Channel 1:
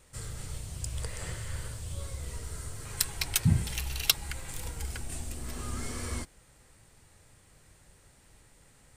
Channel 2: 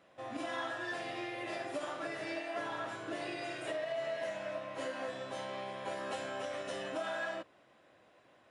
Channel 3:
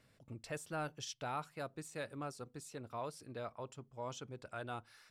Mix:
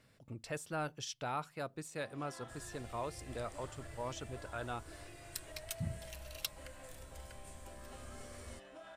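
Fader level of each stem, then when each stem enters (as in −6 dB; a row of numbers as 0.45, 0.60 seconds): −15.5, −15.5, +2.0 decibels; 2.35, 1.80, 0.00 seconds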